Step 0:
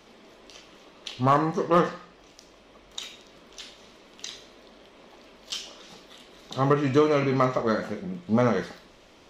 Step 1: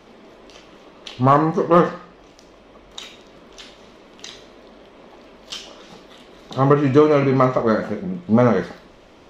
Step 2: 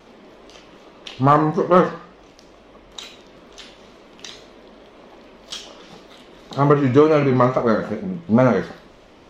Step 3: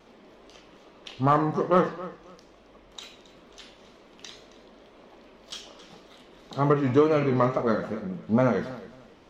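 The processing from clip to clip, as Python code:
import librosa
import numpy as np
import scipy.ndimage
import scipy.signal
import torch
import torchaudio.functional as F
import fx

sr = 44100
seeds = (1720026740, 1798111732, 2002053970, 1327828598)

y1 = fx.high_shelf(x, sr, hz=2400.0, db=-9.0)
y1 = F.gain(torch.from_numpy(y1), 7.5).numpy()
y2 = fx.wow_flutter(y1, sr, seeds[0], rate_hz=2.1, depth_cents=82.0)
y3 = fx.echo_feedback(y2, sr, ms=270, feedback_pct=22, wet_db=-17.0)
y3 = F.gain(torch.from_numpy(y3), -7.0).numpy()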